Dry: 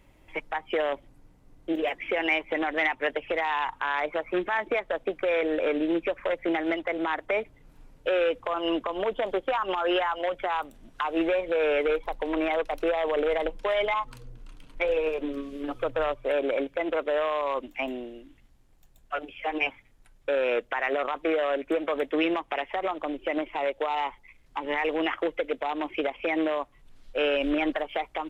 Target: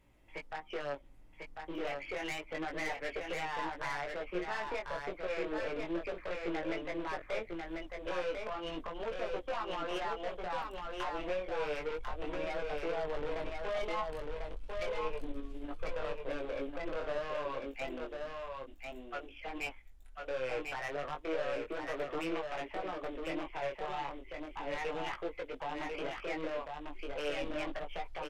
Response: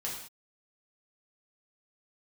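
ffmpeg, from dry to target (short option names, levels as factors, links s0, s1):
-filter_complex "[0:a]asubboost=boost=7:cutoff=51,aeval=exprs='(tanh(20*val(0)+0.35)-tanh(0.35))/20':c=same,flanger=delay=17:depth=6.3:speed=0.32,asplit=2[s0][s1];[s1]aecho=0:1:1046:0.631[s2];[s0][s2]amix=inputs=2:normalize=0,volume=0.596"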